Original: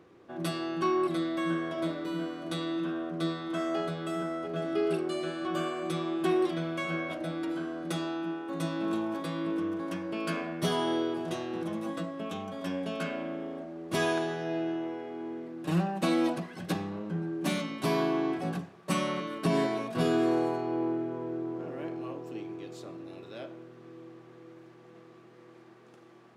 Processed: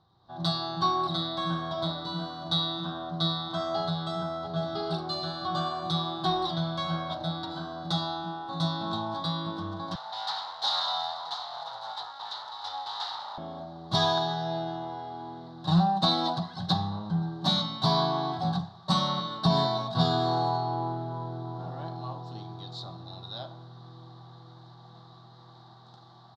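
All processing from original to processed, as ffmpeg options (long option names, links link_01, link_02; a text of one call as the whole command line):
ffmpeg -i in.wav -filter_complex "[0:a]asettb=1/sr,asplit=3[link_01][link_02][link_03];[link_01]atrim=end=9.954[link_04];[link_02]atrim=start=9.95:end=13.38,asetpts=PTS-STARTPTS,afade=type=in:duration=0.004:curve=qsin,afade=type=out:start_time=3.426:duration=0.004:curve=qsin,highshelf=frequency=9000:gain=-9,aeval=exprs='abs(val(0))':channel_layout=same,highpass=830[link_05];[link_03]atrim=start=13.376[link_06];[link_04][link_05]acrossfade=duration=0.004:curve1=hsin:curve2=qsin[link_07];[link_07][link_06]acrossfade=duration=0.004:curve1=qsin:curve2=hsin,firequalizer=gain_entry='entry(120,0);entry(280,-20);entry(490,-21);entry(770,-1);entry(2500,-29);entry(3800,7);entry(6200,-14);entry(9900,-28)':delay=0.05:min_phase=1,dynaudnorm=framelen=220:gausssize=3:maxgain=12dB" out.wav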